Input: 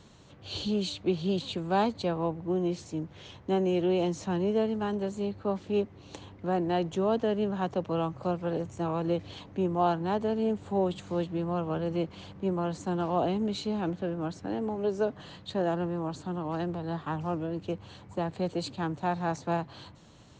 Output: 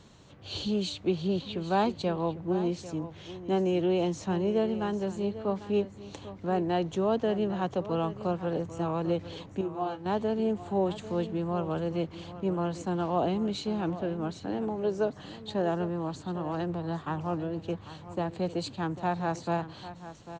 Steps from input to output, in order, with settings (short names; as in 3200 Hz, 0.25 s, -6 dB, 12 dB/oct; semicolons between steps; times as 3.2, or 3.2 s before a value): 1.27–1.71 LPF 2300 Hz -> 4700 Hz 12 dB/oct; 9.61–10.06 resonator 120 Hz, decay 0.15 s, harmonics all, mix 90%; echo 0.796 s -14 dB